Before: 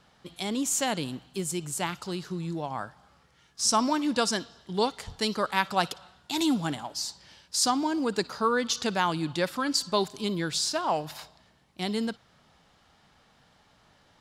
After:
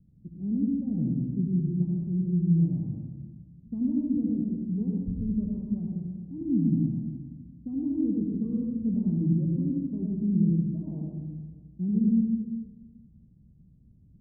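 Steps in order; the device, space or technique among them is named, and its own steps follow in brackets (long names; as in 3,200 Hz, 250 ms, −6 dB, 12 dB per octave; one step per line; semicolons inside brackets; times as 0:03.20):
club heard from the street (brickwall limiter −18.5 dBFS, peak gain reduction 10.5 dB; low-pass filter 220 Hz 24 dB per octave; convolution reverb RT60 1.4 s, pre-delay 67 ms, DRR −2 dB)
level +7 dB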